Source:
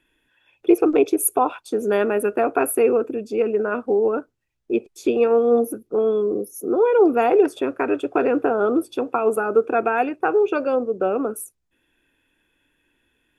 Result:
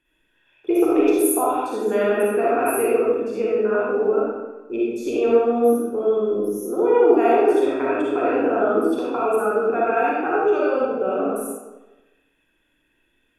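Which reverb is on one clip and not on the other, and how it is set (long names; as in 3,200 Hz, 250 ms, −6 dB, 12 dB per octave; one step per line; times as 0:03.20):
comb and all-pass reverb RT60 1.1 s, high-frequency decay 0.8×, pre-delay 15 ms, DRR −7 dB
level −7 dB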